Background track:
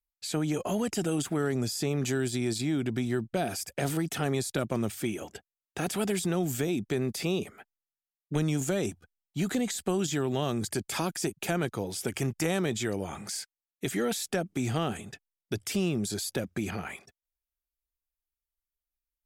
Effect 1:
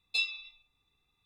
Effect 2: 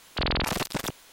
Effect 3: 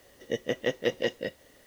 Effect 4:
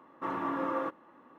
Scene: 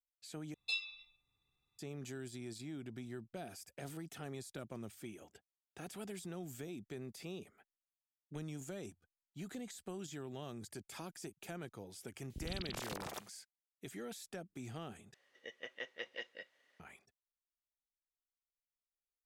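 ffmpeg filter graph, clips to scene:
ffmpeg -i bed.wav -i cue0.wav -i cue1.wav -i cue2.wav -filter_complex "[0:a]volume=-17dB[link_01];[1:a]equalizer=frequency=120:width_type=o:width=0.77:gain=6[link_02];[2:a]acrossover=split=320|2000[link_03][link_04][link_05];[link_05]adelay=130[link_06];[link_04]adelay=390[link_07];[link_03][link_07][link_06]amix=inputs=3:normalize=0[link_08];[3:a]bandpass=frequency=2000:width_type=q:width=0.99:csg=0[link_09];[link_01]asplit=3[link_10][link_11][link_12];[link_10]atrim=end=0.544[link_13];[link_02]atrim=end=1.25,asetpts=PTS-STARTPTS,volume=-7.5dB[link_14];[link_11]atrim=start=1.786:end=15.144[link_15];[link_09]atrim=end=1.66,asetpts=PTS-STARTPTS,volume=-10dB[link_16];[link_12]atrim=start=16.796[link_17];[link_08]atrim=end=1.12,asetpts=PTS-STARTPTS,volume=-14.5dB,afade=type=in:duration=0.004:curve=hsin,afade=type=out:start_time=1.116:duration=0.004:curve=hsin,adelay=12170[link_18];[link_13][link_14]acrossfade=duration=0.004:curve1=hsin:curve2=hsin[link_19];[link_19][link_15]acrossfade=duration=0.004:curve1=hsin:curve2=hsin[link_20];[link_20][link_16]acrossfade=duration=0.004:curve1=hsin:curve2=hsin[link_21];[link_21][link_17]acrossfade=duration=0.004:curve1=hsin:curve2=hsin[link_22];[link_22][link_18]amix=inputs=2:normalize=0" out.wav

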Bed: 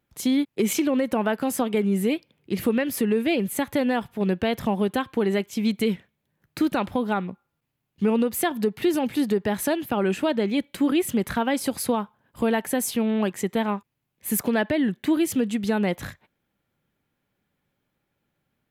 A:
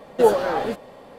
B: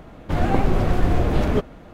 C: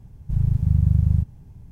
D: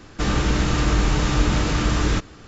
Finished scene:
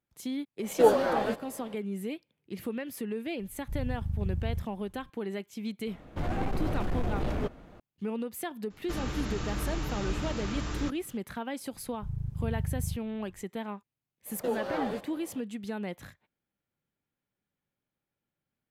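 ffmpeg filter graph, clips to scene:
ffmpeg -i bed.wav -i cue0.wav -i cue1.wav -i cue2.wav -i cue3.wav -filter_complex "[1:a]asplit=2[link_01][link_02];[3:a]asplit=2[link_03][link_04];[0:a]volume=-12.5dB[link_05];[link_03]aecho=1:1:3.5:0.53[link_06];[2:a]asoftclip=type=tanh:threshold=-15dB[link_07];[link_02]alimiter=limit=-14.5dB:level=0:latency=1:release=270[link_08];[link_01]atrim=end=1.18,asetpts=PTS-STARTPTS,volume=-4.5dB,afade=type=in:duration=0.05,afade=type=out:start_time=1.13:duration=0.05,adelay=600[link_09];[link_06]atrim=end=1.71,asetpts=PTS-STARTPTS,volume=-13dB,afade=type=in:duration=0.004:curve=hsin,afade=type=out:start_time=1.706:duration=0.004:curve=hsin,adelay=3390[link_10];[link_07]atrim=end=1.93,asetpts=PTS-STARTPTS,volume=-8.5dB,afade=type=in:duration=0.004:curve=hsin,afade=type=out:start_time=1.926:duration=0.004:curve=hsin,adelay=5870[link_11];[4:a]atrim=end=2.47,asetpts=PTS-STARTPTS,volume=-14dB,afade=type=in:duration=0.004:curve=hsin,afade=type=out:start_time=2.466:duration=0.004:curve=hsin,adelay=8700[link_12];[link_04]atrim=end=1.71,asetpts=PTS-STARTPTS,volume=-14.5dB,afade=type=in:duration=0.004:curve=hsin,afade=type=out:start_time=1.706:duration=0.004:curve=hsin,adelay=11730[link_13];[link_08]atrim=end=1.18,asetpts=PTS-STARTPTS,volume=-8dB,afade=type=in:duration=0.05,afade=type=out:start_time=1.13:duration=0.05,adelay=14250[link_14];[link_05][link_09][link_10][link_11][link_12][link_13][link_14]amix=inputs=7:normalize=0" out.wav

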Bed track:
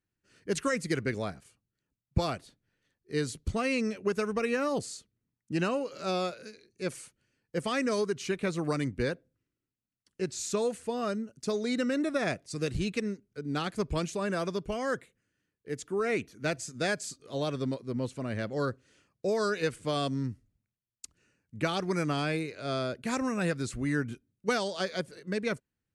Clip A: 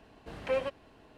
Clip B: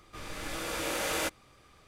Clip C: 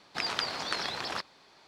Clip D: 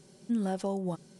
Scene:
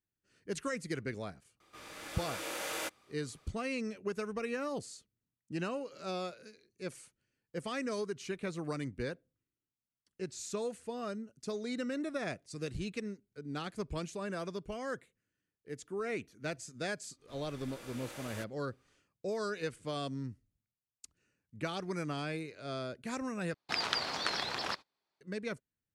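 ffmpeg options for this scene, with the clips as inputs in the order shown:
ffmpeg -i bed.wav -i cue0.wav -i cue1.wav -i cue2.wav -filter_complex "[2:a]asplit=2[link_01][link_02];[0:a]volume=-7.5dB[link_03];[link_01]highpass=frequency=300:poles=1[link_04];[3:a]agate=range=-27dB:threshold=-55dB:ratio=16:release=100:detection=peak[link_05];[link_03]asplit=2[link_06][link_07];[link_06]atrim=end=23.544[link_08];[link_05]atrim=end=1.67,asetpts=PTS-STARTPTS,volume=-1.5dB[link_09];[link_07]atrim=start=25.206[link_10];[link_04]atrim=end=1.87,asetpts=PTS-STARTPTS,volume=-6dB,afade=type=in:duration=0.004:curve=hsin,afade=type=out:start_time=1.866:duration=0.004:curve=hsin,adelay=1600[link_11];[link_02]atrim=end=1.87,asetpts=PTS-STARTPTS,volume=-15.5dB,afade=type=in:duration=0.1,afade=type=out:start_time=1.77:duration=0.1,adelay=17150[link_12];[link_08][link_09]acrossfade=duration=0.004:curve1=hsin:curve2=hsin[link_13];[link_13][link_10]acrossfade=duration=0.004:curve1=hsin:curve2=hsin[link_14];[link_14][link_11][link_12]amix=inputs=3:normalize=0" out.wav

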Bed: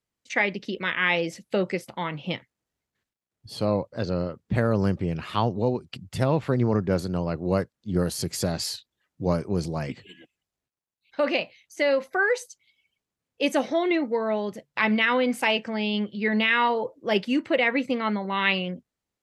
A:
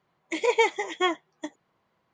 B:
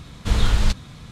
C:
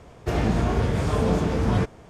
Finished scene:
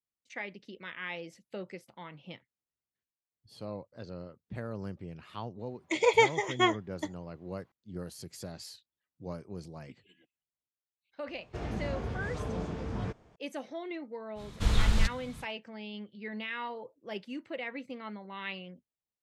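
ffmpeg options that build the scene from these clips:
ffmpeg -i bed.wav -i cue0.wav -i cue1.wav -i cue2.wav -filter_complex "[0:a]volume=-16dB[link_01];[3:a]lowpass=6900[link_02];[1:a]atrim=end=2.13,asetpts=PTS-STARTPTS,volume=-1dB,afade=type=in:duration=0.004:curve=hsin,afade=type=out:start_time=2.126:duration=0.004:curve=hsin,adelay=5590[link_03];[link_02]atrim=end=2.09,asetpts=PTS-STARTPTS,volume=-13.5dB,afade=type=in:duration=0.004:curve=hsin,afade=type=out:start_time=2.086:duration=0.004:curve=hsin,adelay=11270[link_04];[2:a]atrim=end=1.11,asetpts=PTS-STARTPTS,volume=-7dB,afade=type=in:duration=0.05,afade=type=out:start_time=1.06:duration=0.05,adelay=14350[link_05];[link_01][link_03][link_04][link_05]amix=inputs=4:normalize=0" out.wav

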